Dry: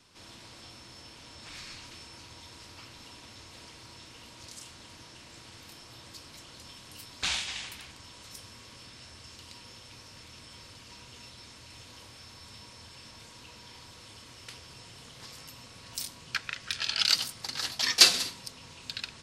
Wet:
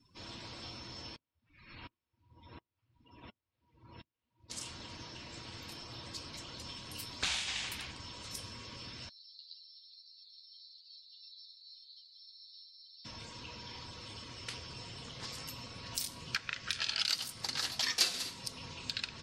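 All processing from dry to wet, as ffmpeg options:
-filter_complex "[0:a]asettb=1/sr,asplit=3[a][b][c];[a]atrim=end=1.164[d];[b]atrim=start=1.16:end=4.5,asetpts=PTS-STARTPTS,afade=t=in:d=0.004:c=qsin,afade=t=out:st=3.336:d=0.004:c=qsin,lowpass=3.1k,aeval=exprs='val(0)*pow(10,-29*if(lt(mod(-1.4*n/s,1),2*abs(-1.4)/1000),1-mod(-1.4*n/s,1)/(2*abs(-1.4)/1000),(mod(-1.4*n/s,1)-2*abs(-1.4)/1000)/(1-2*abs(-1.4)/1000))/20)':c=same[e];[c]atrim=start=4.496[f];[d][e]acrossfade=d=0.004:c1=hsin:c2=qsin[g];[g][f]acrossfade=d=0.004:c1=qsin:c2=hsin,asettb=1/sr,asplit=3[h][i][j];[h]atrim=end=9.094[k];[i]atrim=start=9.09:end=13.05,asetpts=PTS-STARTPTS,afade=t=in:d=0.004:c=qsin,afade=t=out:st=3.956:d=0.004:c=qsin,bandpass=f=4.2k:t=q:w=6.6,asplit=2[l][m];[m]adelay=12,volume=-3dB[n];[l][n]amix=inputs=2:normalize=0,atrim=end_sample=174636[o];[j]atrim=start=13.046[p];[k][o]acrossfade=d=0.004:c1=hsin:c2=qsin[q];[q][p]acrossfade=d=0.004:c1=qsin:c2=hsin,afftdn=nr=23:nf=-56,acompressor=threshold=-39dB:ratio=2.5,volume=4dB"

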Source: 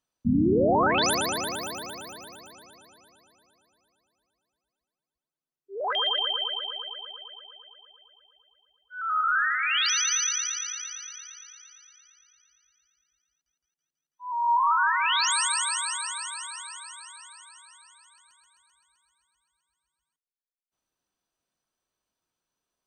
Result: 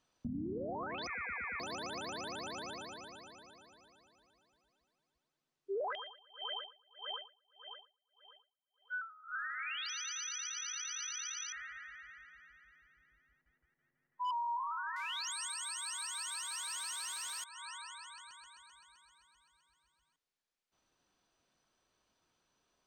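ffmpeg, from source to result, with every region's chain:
-filter_complex "[0:a]asettb=1/sr,asplit=3[a][b][c];[a]atrim=end=1.074[d];[b]atrim=start=1.07:end=1.6,asetpts=PTS-STARTPTS,afade=t=in:d=0.004:c=qsin,afade=t=out:st=0.526:d=0.004:c=qsin,highpass=f=280:p=1,lowpass=f=2.3k:t=q:w=0.5098,lowpass=f=2.3k:t=q:w=0.6013,lowpass=f=2.3k:t=q:w=0.9,lowpass=f=2.3k:t=q:w=2.563,afreqshift=-2700[e];[c]atrim=start=1.596[f];[d][e]acrossfade=d=0.004:c1=hsin:c2=qsin[g];[g][f]acrossfade=d=0.004:c1=qsin:c2=hsin,asettb=1/sr,asplit=3[h][i][j];[h]atrim=end=5.954[k];[i]atrim=start=5.95:end=9.5,asetpts=PTS-STARTPTS,afade=t=in:d=0.004:c=qsin,afade=t=out:st=3.546:d=0.004:c=qsin,acompressor=threshold=-40dB:ratio=1.5:attack=3.2:release=140:knee=1:detection=peak,highpass=450,lowpass=2.4k,aeval=exprs='val(0)*pow(10,-36*(0.5-0.5*cos(2*PI*1.7*n/s))/20)':c=same[l];[j]atrim=start=9.496[m];[k][l]acrossfade=d=0.004:c1=hsin:c2=qsin[n];[n][m]acrossfade=d=0.004:c1=qsin:c2=hsin,asettb=1/sr,asplit=3[o][p][q];[o]atrim=end=11.524[r];[p]atrim=start=11.52:end=14.31,asetpts=PTS-STARTPTS,afade=t=in:d=0.004:c=qsin,afade=t=out:st=2.786:d=0.004:c=qsin,lowpass=f=1.9k:t=q:w=9.2,tiltshelf=f=900:g=9,asoftclip=type=hard:threshold=-34dB[s];[q]atrim=start=14.306[t];[r][s]acrossfade=d=0.004:c1=hsin:c2=qsin[u];[u][t]acrossfade=d=0.004:c1=qsin:c2=hsin,asettb=1/sr,asplit=3[v][w][x];[v]atrim=end=14.964[y];[w]atrim=start=14.96:end=17.44,asetpts=PTS-STARTPTS,afade=t=in:d=0.004:c=qsin,afade=t=out:st=2.476:d=0.004:c=qsin,aeval=exprs='val(0)+0.5*0.0178*sgn(val(0))':c=same,highpass=f=810:p=1,aemphasis=mode=production:type=50fm[z];[x]atrim=start=17.436[aa];[y][z]acrossfade=d=0.004:c1=hsin:c2=qsin[ab];[ab][aa]acrossfade=d=0.004:c1=qsin:c2=hsin,acompressor=threshold=-38dB:ratio=10,lowpass=6k,alimiter=level_in=16.5dB:limit=-24dB:level=0:latency=1:release=235,volume=-16.5dB,volume=8dB"

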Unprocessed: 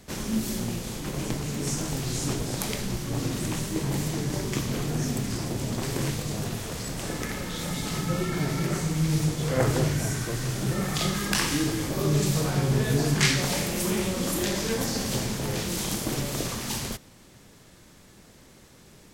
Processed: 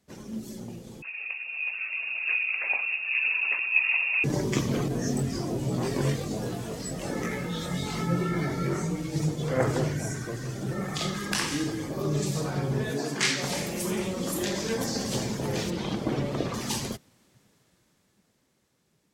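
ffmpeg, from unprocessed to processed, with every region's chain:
-filter_complex "[0:a]asettb=1/sr,asplit=3[a][b][c];[a]atrim=end=1.024[d];[b]atrim=start=1.02:end=4.24,asetpts=PTS-STARTPTS,afade=t=in:d=0.004:c=qsin,afade=t=out:st=3.216:d=0.004:c=qsin,highpass=220,equalizer=f=410:t=o:w=0.34:g=10,lowpass=f=2.5k:t=q:w=0.5098,lowpass=f=2.5k:t=q:w=0.6013,lowpass=f=2.5k:t=q:w=0.9,lowpass=f=2.5k:t=q:w=2.563,afreqshift=-2900[e];[c]atrim=start=4.236[f];[d][e]acrossfade=d=0.004:c1=hsin:c2=qsin[g];[g][f]acrossfade=d=0.004:c1=qsin:c2=hsin,asettb=1/sr,asplit=3[h][i][j];[h]atrim=end=4.884[k];[i]atrim=start=4.88:end=9.16,asetpts=PTS-STARTPTS,afade=t=in:d=0.004:c=qsin,afade=t=out:st=4.276:d=0.004:c=qsin,flanger=delay=16:depth=5.4:speed=1.2,asplit=2[l][m];[m]adelay=23,volume=-2.5dB[n];[l][n]amix=inputs=2:normalize=0,atrim=end_sample=188748[o];[j]atrim=start=9.156[p];[k][o]acrossfade=d=0.004:c1=hsin:c2=qsin[q];[q][p]acrossfade=d=0.004:c1=qsin:c2=hsin,asettb=1/sr,asplit=3[r][s][t];[r]atrim=end=12.904[u];[s]atrim=start=12.9:end=13.43,asetpts=PTS-STARTPTS,afade=t=in:d=0.004:c=qsin,afade=t=out:st=0.526:d=0.004:c=qsin,highpass=200,bandreject=f=50:t=h:w=6,bandreject=f=100:t=h:w=6,bandreject=f=150:t=h:w=6,bandreject=f=200:t=h:w=6,bandreject=f=250:t=h:w=6,bandreject=f=300:t=h:w=6,bandreject=f=350:t=h:w=6,bandreject=f=400:t=h:w=6,bandreject=f=450:t=h:w=6[v];[t]atrim=start=13.426[w];[u][v]acrossfade=d=0.004:c1=hsin:c2=qsin[x];[x][w]acrossfade=d=0.004:c1=qsin:c2=hsin,asettb=1/sr,asplit=3[y][z][aa];[y]atrim=end=15.704[ab];[z]atrim=start=15.7:end=16.54,asetpts=PTS-STARTPTS,afade=t=in:d=0.004:c=qsin,afade=t=out:st=0.836:d=0.004:c=qsin,highshelf=f=7k:g=-12,acrossover=split=6200[ac][ad];[ad]acompressor=threshold=-49dB:ratio=4:attack=1:release=60[ae];[ac][ae]amix=inputs=2:normalize=0[af];[aa]atrim=start=16.536[ag];[ab][af]acrossfade=d=0.004:c1=hsin:c2=qsin[ah];[ah][ag]acrossfade=d=0.004:c1=qsin:c2=hsin,afftdn=nr=12:nf=-37,highpass=f=140:p=1,dynaudnorm=f=320:g=13:m=12.5dB,volume=-7dB"

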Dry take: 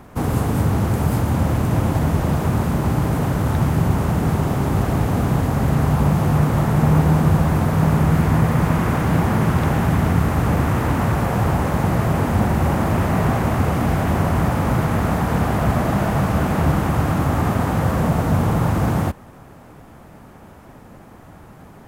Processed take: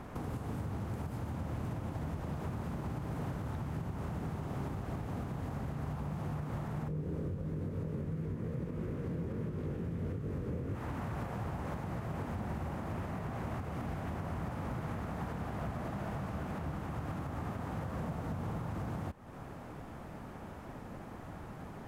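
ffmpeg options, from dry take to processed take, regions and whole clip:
-filter_complex "[0:a]asettb=1/sr,asplit=3[a][b][c];[a]atrim=end=6.884[d];[b]atrim=start=6.88:end=10.75,asetpts=PTS-STARTPTS,afade=t=in:d=0.004:c=qsin,afade=t=out:st=3.866:d=0.004:c=qsin,lowshelf=f=600:t=q:w=3:g=7.5,flanger=delay=19.5:depth=4:speed=1.5[e];[c]atrim=start=10.746[f];[d][e]acrossfade=d=0.004:c1=hsin:c2=qsin[g];[g][f]acrossfade=d=0.004:c1=qsin:c2=hsin,acompressor=threshold=-31dB:ratio=3,highshelf=f=8.3k:g=-9,alimiter=level_in=2dB:limit=-24dB:level=0:latency=1:release=357,volume=-2dB,volume=-3.5dB"

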